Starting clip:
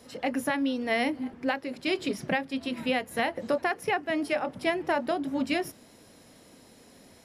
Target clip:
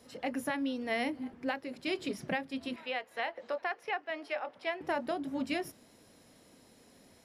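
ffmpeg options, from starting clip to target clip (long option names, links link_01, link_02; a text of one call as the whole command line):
ffmpeg -i in.wav -filter_complex "[0:a]asettb=1/sr,asplit=3[link_01][link_02][link_03];[link_01]atrim=end=2.764[link_04];[link_02]atrim=start=2.76:end=4.81,asetpts=PTS-STARTPTS,afade=type=in:duration=0.004:curve=qsin,afade=type=out:start_time=2.046:duration=0.004:curve=qsin,acrossover=split=440 5100:gain=0.0891 1 0.158[link_05][link_06][link_07];[link_05][link_06][link_07]amix=inputs=3:normalize=0[link_08];[link_03]atrim=start=4.806[link_09];[link_04][link_08]acrossfade=duration=0.004:curve1=hsin:curve2=qsin[link_10];[link_10][link_09]acrossfade=duration=0.004:curve1=qsin:curve2=hsin,volume=-6dB" out.wav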